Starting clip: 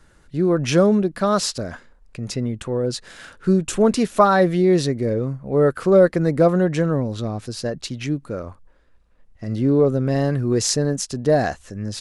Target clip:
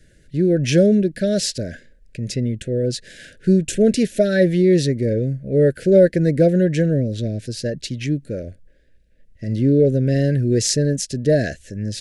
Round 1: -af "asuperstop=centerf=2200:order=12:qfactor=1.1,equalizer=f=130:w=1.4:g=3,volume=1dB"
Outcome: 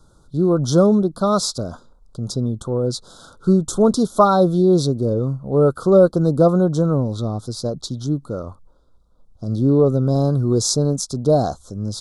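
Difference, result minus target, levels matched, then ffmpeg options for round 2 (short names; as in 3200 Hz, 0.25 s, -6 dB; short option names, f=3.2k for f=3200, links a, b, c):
1000 Hz band +18.0 dB
-af "asuperstop=centerf=1000:order=12:qfactor=1.1,equalizer=f=130:w=1.4:g=3,volume=1dB"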